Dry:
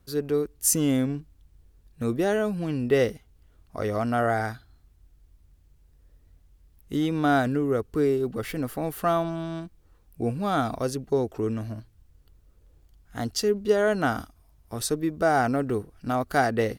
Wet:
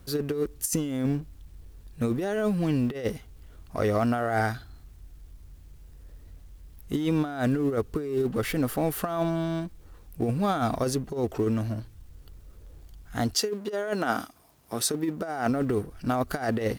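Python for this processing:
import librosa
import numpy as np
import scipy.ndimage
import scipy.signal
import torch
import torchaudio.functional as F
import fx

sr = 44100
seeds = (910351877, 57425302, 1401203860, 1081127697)

y = fx.law_mismatch(x, sr, coded='mu')
y = fx.highpass(y, sr, hz=fx.line((13.33, 310.0), (15.48, 140.0)), slope=12, at=(13.33, 15.48), fade=0.02)
y = fx.over_compress(y, sr, threshold_db=-25.0, ratio=-0.5)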